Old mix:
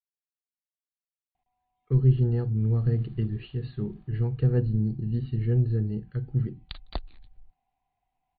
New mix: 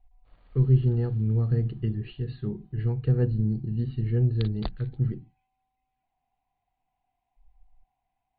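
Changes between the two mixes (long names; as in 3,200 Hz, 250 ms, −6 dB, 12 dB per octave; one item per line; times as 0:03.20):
speech: entry −1.35 s
background: entry −2.30 s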